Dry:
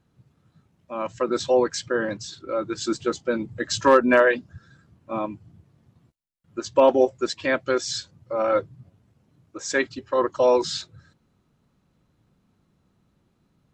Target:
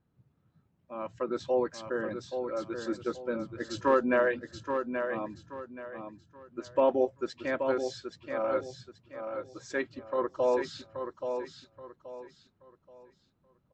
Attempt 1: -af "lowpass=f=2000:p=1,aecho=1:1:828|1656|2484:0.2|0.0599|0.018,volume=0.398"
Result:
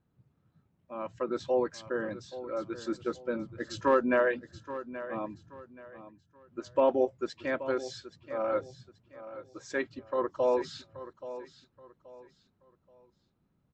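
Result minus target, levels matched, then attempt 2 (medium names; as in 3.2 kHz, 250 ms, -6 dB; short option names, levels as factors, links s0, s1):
echo-to-direct -7 dB
-af "lowpass=f=2000:p=1,aecho=1:1:828|1656|2484|3312:0.447|0.134|0.0402|0.0121,volume=0.398"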